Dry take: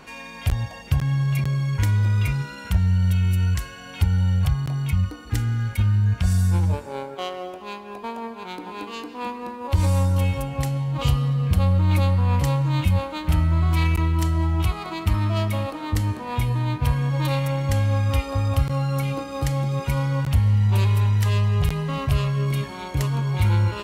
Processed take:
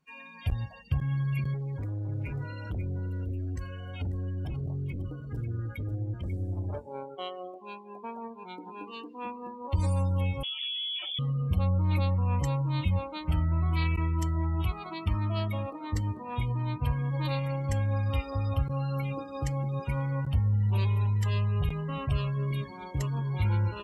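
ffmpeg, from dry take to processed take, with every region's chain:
-filter_complex "[0:a]asettb=1/sr,asplit=3[a][b][c];[a]atrim=end=1.544[d];[b]atrim=start=1.54:end=6.78,asetpts=PTS-STARTPTS,afade=t=in:d=0.004:c=qsin,afade=t=out:st=5.236:d=0.004:c=qsin,equalizer=f=580:w=3.1:g=9.5,volume=24.5dB,asoftclip=hard,volume=-24.5dB,aecho=1:1:542:0.473,atrim=end_sample=231084[e];[c]atrim=start=6.776[f];[d][e]acrossfade=d=0.004:c1=hsin:c2=qsin[g];[g][f]acrossfade=d=0.004:c1=qsin:c2=hsin,asettb=1/sr,asplit=3[h][i][j];[h]atrim=end=10.434[k];[i]atrim=start=10.43:end=11.19,asetpts=PTS-STARTPTS,afade=t=in:d=0.004:c=qsin,afade=t=out:st=0.756:d=0.004:c=qsin,acompressor=threshold=-22dB:ratio=4:attack=3.2:release=140:knee=1:detection=peak,aeval=exprs='0.0562*(abs(mod(val(0)/0.0562+3,4)-2)-1)':c=same,lowpass=f=3k:t=q:w=0.5098,lowpass=f=3k:t=q:w=0.6013,lowpass=f=3k:t=q:w=0.9,lowpass=f=3k:t=q:w=2.563,afreqshift=-3500[l];[j]atrim=start=11.186[m];[k][l]acrossfade=d=0.004:c1=hsin:c2=qsin[n];[n][m]acrossfade=d=0.004:c1=qsin:c2=hsin,afftdn=nr=29:nf=-33,aemphasis=mode=production:type=cd,volume=-7dB"

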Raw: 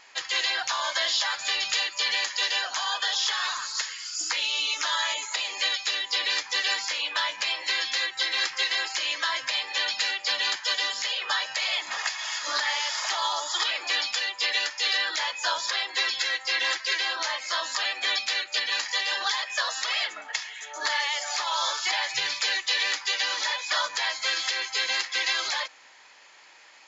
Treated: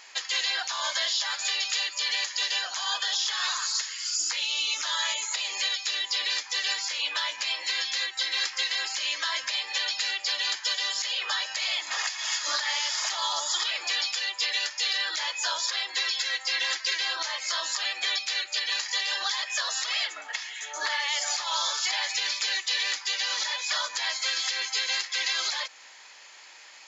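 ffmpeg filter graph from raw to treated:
-filter_complex "[0:a]asettb=1/sr,asplit=3[a][b][c];[a]atrim=end=20.284[d];[b]atrim=start=20.28:end=21.08,asetpts=PTS-STARTPTS,afade=t=in:d=0.004:c=qsin,afade=t=out:st=0.796:d=0.004:c=qsin,acrossover=split=3700[e][f];[f]acompressor=threshold=-40dB:ratio=4:attack=1:release=60[g];[e][g]amix=inputs=2:normalize=0,highpass=71,lowshelf=f=120:g=-9[h];[c]atrim=start=21.076[i];[d][h]acrossfade=d=0.004:c1=hsin:c2=qsin[j];[j][i]acrossfade=d=0.004:c1=qsin:c2=hsin,highshelf=f=3.3k:g=8.5,alimiter=limit=-17.5dB:level=0:latency=1:release=319,bass=f=250:g=-7,treble=f=4k:g=0"

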